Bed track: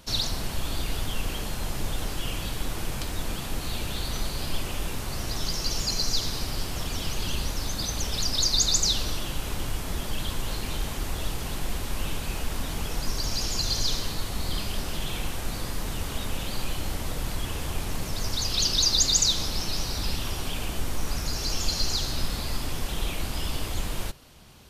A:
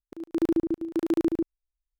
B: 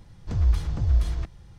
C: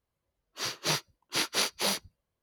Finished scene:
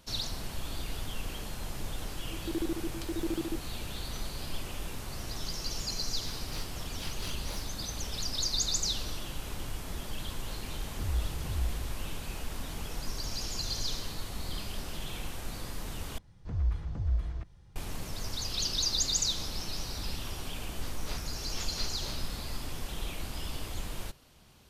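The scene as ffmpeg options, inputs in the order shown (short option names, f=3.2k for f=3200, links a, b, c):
-filter_complex "[3:a]asplit=2[a][b];[2:a]asplit=2[c][d];[0:a]volume=-7.5dB[e];[d]acrossover=split=2800[f][g];[g]acompressor=threshold=-58dB:ratio=4:attack=1:release=60[h];[f][h]amix=inputs=2:normalize=0[i];[b]afwtdn=0.0158[j];[e]asplit=2[k][l];[k]atrim=end=16.184[m];[i]atrim=end=1.58,asetpts=PTS-STARTPTS,volume=-8.5dB[n];[l]atrim=start=17.756[o];[1:a]atrim=end=1.99,asetpts=PTS-STARTPTS,volume=-9.5dB,afade=t=in:d=0.004:c=hsin,afade=t=out:st=1.986:d=0.004:c=hsin,adelay=2130[p];[a]atrim=end=2.42,asetpts=PTS-STARTPTS,volume=-16dB,afade=t=in:d=0.004:c=hsin,afade=t=out:st=2.416:d=0.004:c=hsin,adelay=5660[q];[c]atrim=end=1.58,asetpts=PTS-STARTPTS,volume=-11dB,afade=t=in:d=0.004:c=hsin,afade=t=out:st=1.576:d=0.004:c=hsin,adelay=10680[r];[j]atrim=end=2.42,asetpts=PTS-STARTPTS,volume=-14.5dB,afade=t=in:d=0.004:c=hsin,afade=t=out:st=2.416:d=0.004:c=hsin,adelay=20210[s];[m][n]acrossfade=d=0.004:c1=hsin:c2=hsin[t];[t][o]acrossfade=d=0.004:c1=hsin:c2=hsin[u];[u][p][q][r][s]amix=inputs=5:normalize=0"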